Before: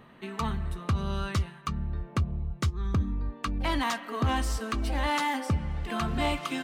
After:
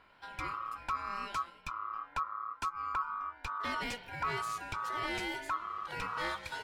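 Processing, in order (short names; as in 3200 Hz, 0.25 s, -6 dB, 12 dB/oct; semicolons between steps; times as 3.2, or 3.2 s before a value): wow and flutter 81 cents; ring modulator 1200 Hz; gain -6 dB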